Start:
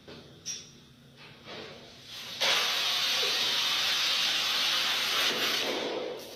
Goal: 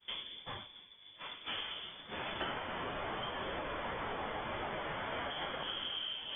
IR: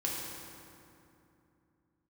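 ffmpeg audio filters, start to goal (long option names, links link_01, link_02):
-filter_complex "[0:a]acrossover=split=700|1500[link_01][link_02][link_03];[link_02]aeval=exprs='(mod(141*val(0)+1,2)-1)/141':channel_layout=same[link_04];[link_01][link_04][link_03]amix=inputs=3:normalize=0,lowpass=frequency=3100:width_type=q:width=0.5098,lowpass=frequency=3100:width_type=q:width=0.6013,lowpass=frequency=3100:width_type=q:width=0.9,lowpass=frequency=3100:width_type=q:width=2.563,afreqshift=-3600,acompressor=threshold=-44dB:ratio=16,agate=range=-33dB:threshold=-47dB:ratio=3:detection=peak,volume=8dB"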